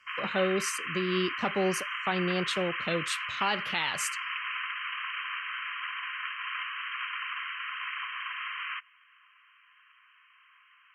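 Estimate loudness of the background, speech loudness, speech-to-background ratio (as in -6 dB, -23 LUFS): -34.0 LUFS, -31.5 LUFS, 2.5 dB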